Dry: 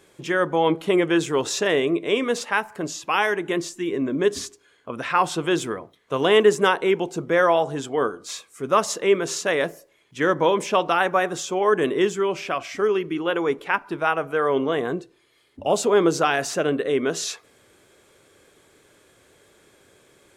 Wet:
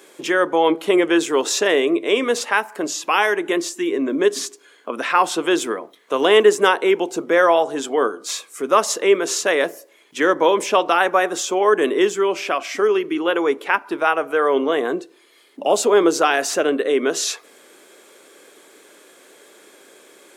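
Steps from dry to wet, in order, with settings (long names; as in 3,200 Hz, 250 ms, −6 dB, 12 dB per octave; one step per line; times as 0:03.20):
high-pass filter 250 Hz 24 dB per octave
high-shelf EQ 11,000 Hz +5.5 dB
in parallel at −0.5 dB: downward compressor, threshold −34 dBFS, peak gain reduction 21 dB
on the sum: level +2.5 dB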